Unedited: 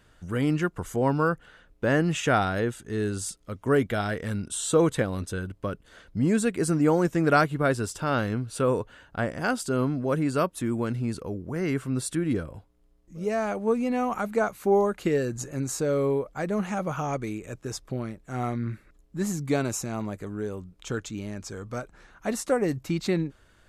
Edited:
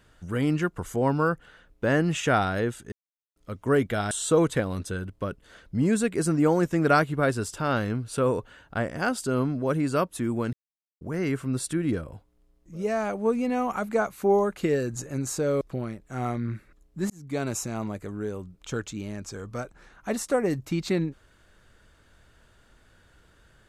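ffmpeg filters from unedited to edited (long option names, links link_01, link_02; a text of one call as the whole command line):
ffmpeg -i in.wav -filter_complex "[0:a]asplit=8[link_01][link_02][link_03][link_04][link_05][link_06][link_07][link_08];[link_01]atrim=end=2.92,asetpts=PTS-STARTPTS,afade=type=out:start_time=2.916:duration=0.004:curve=hsin[link_09];[link_02]atrim=start=2.92:end=3.36,asetpts=PTS-STARTPTS,volume=0[link_10];[link_03]atrim=start=3.36:end=4.112,asetpts=PTS-STARTPTS,afade=type=in:duration=0.004:curve=hsin[link_11];[link_04]atrim=start=4.528:end=10.95,asetpts=PTS-STARTPTS,afade=type=out:start_time=6.418:duration=0.004:curve=hsin[link_12];[link_05]atrim=start=10.95:end=11.43,asetpts=PTS-STARTPTS,volume=0[link_13];[link_06]atrim=start=11.43:end=16.032,asetpts=PTS-STARTPTS,afade=type=in:duration=0.004:curve=hsin[link_14];[link_07]atrim=start=17.788:end=19.28,asetpts=PTS-STARTPTS,afade=type=out:start_time=1.488:duration=0.004:curve=hsin[link_15];[link_08]atrim=start=19.28,asetpts=PTS-STARTPTS,afade=type=in:duration=0.45[link_16];[link_09][link_10][link_11]concat=n=3:v=0:a=1[link_17];[link_12][link_13][link_14]concat=n=3:v=0:a=1[link_18];[link_17][link_18]acrossfade=duration=0.004:curve1=hsin:curve2=hsin[link_19];[link_15][link_16]concat=n=2:v=0:a=1[link_20];[link_19][link_20]acrossfade=duration=0.004:curve1=hsin:curve2=hsin" out.wav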